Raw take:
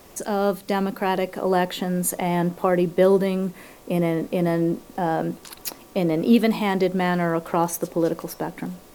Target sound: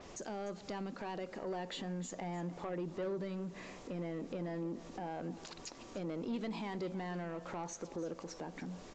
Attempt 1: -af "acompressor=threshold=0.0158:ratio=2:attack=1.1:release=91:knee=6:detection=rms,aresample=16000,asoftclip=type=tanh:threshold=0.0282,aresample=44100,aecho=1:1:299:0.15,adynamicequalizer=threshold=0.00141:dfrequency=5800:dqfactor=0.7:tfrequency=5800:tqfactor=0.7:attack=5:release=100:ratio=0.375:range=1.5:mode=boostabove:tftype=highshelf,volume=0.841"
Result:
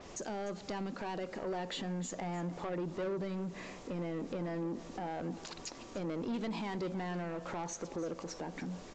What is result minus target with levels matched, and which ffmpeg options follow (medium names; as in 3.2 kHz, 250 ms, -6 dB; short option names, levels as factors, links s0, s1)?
compression: peak gain reduction -4 dB
-af "acompressor=threshold=0.00596:ratio=2:attack=1.1:release=91:knee=6:detection=rms,aresample=16000,asoftclip=type=tanh:threshold=0.0282,aresample=44100,aecho=1:1:299:0.15,adynamicequalizer=threshold=0.00141:dfrequency=5800:dqfactor=0.7:tfrequency=5800:tqfactor=0.7:attack=5:release=100:ratio=0.375:range=1.5:mode=boostabove:tftype=highshelf,volume=0.841"